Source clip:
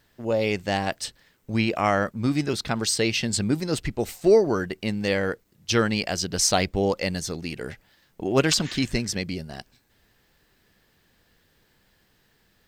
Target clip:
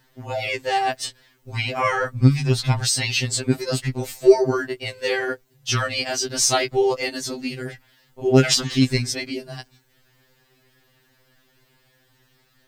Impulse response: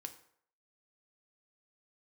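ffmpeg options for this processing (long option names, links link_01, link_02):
-filter_complex "[0:a]asplit=3[link_01][link_02][link_03];[link_01]afade=type=out:start_time=1.84:duration=0.02[link_04];[link_02]asubboost=boost=6:cutoff=130,afade=type=in:start_time=1.84:duration=0.02,afade=type=out:start_time=2.84:duration=0.02[link_05];[link_03]afade=type=in:start_time=2.84:duration=0.02[link_06];[link_04][link_05][link_06]amix=inputs=3:normalize=0,afftfilt=real='re*2.45*eq(mod(b,6),0)':imag='im*2.45*eq(mod(b,6),0)':win_size=2048:overlap=0.75,volume=5.5dB"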